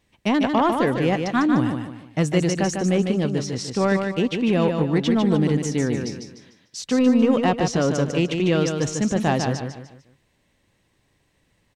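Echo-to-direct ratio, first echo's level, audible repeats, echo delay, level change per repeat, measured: -5.0 dB, -5.5 dB, 4, 0.149 s, -9.0 dB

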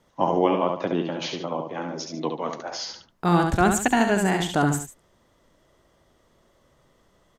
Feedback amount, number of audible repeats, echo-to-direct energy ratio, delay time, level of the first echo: no steady repeat, 2, -4.5 dB, 69 ms, -5.5 dB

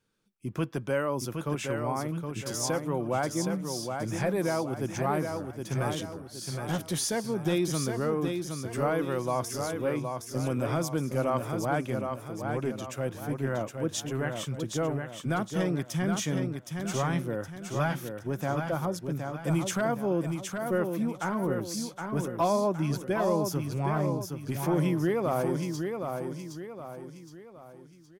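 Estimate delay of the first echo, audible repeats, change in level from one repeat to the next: 0.767 s, 4, -7.5 dB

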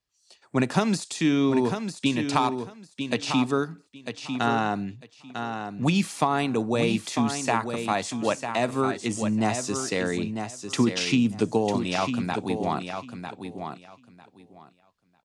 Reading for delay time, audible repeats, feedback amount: 0.949 s, 2, 18%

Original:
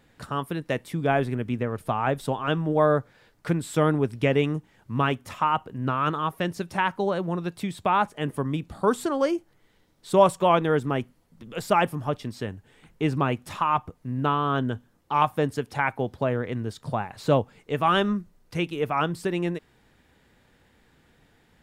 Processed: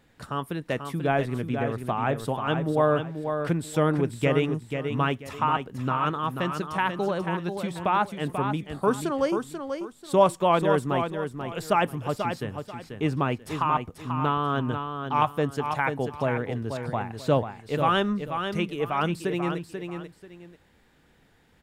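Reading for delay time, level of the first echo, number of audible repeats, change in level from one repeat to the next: 0.488 s, -7.0 dB, 2, -11.5 dB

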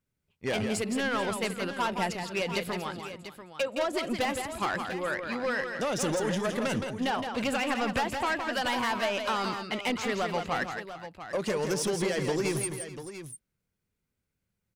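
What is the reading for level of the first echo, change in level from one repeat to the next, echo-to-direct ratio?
-6.5 dB, no steady repeat, -5.0 dB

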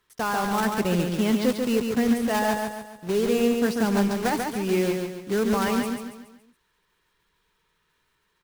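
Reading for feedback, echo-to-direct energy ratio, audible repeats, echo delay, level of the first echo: 43%, -3.5 dB, 5, 0.14 s, -4.5 dB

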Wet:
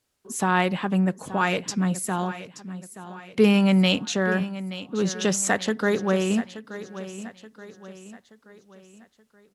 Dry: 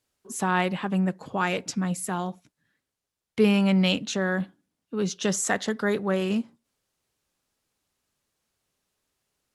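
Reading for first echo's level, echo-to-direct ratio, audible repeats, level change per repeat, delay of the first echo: -14.0 dB, -13.0 dB, 4, -7.0 dB, 0.877 s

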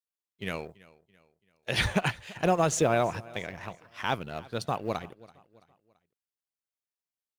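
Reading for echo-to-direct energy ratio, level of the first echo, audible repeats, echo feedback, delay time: -21.0 dB, -22.0 dB, 2, 43%, 0.334 s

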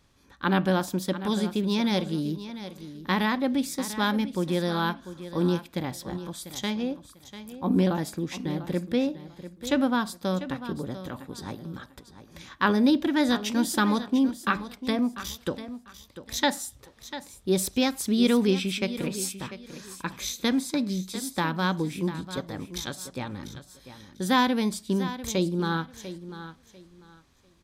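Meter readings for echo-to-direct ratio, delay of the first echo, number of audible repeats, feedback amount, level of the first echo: -13.0 dB, 0.695 s, 2, 23%, -13.0 dB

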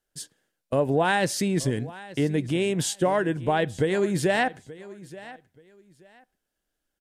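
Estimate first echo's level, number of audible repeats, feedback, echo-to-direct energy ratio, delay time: -18.5 dB, 2, 23%, -18.5 dB, 0.879 s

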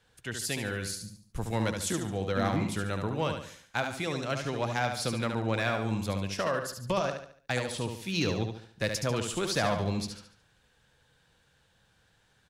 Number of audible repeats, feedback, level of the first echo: 4, 40%, -6.0 dB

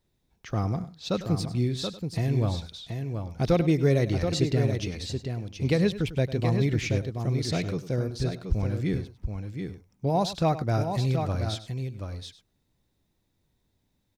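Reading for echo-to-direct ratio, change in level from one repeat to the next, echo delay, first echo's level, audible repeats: -5.5 dB, no steady repeat, 0.1 s, -14.5 dB, 3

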